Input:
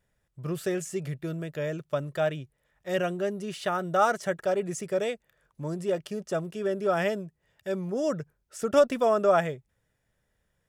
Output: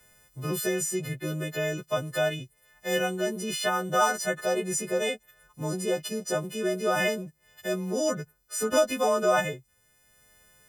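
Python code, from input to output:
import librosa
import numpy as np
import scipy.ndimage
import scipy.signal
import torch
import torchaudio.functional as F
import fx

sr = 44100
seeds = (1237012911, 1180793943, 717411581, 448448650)

y = fx.freq_snap(x, sr, grid_st=3)
y = fx.band_squash(y, sr, depth_pct=40)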